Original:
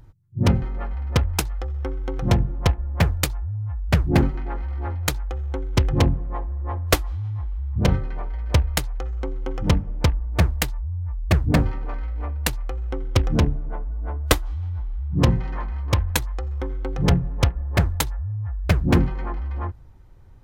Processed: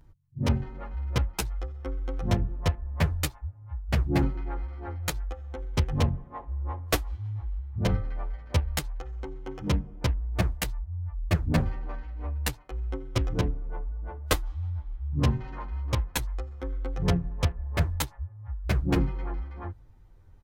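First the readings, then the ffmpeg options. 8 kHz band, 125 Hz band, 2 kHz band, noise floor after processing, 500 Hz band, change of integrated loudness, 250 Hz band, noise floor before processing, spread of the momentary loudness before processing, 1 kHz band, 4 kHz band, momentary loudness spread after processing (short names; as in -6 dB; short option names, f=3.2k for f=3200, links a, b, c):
-6.5 dB, -6.5 dB, -6.5 dB, -52 dBFS, -6.5 dB, -6.5 dB, -6.5 dB, -43 dBFS, 10 LU, -6.5 dB, -6.5 dB, 11 LU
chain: -filter_complex "[0:a]asplit=2[a][b];[b]adelay=9.9,afreqshift=-0.34[c];[a][c]amix=inputs=2:normalize=1,volume=-3.5dB"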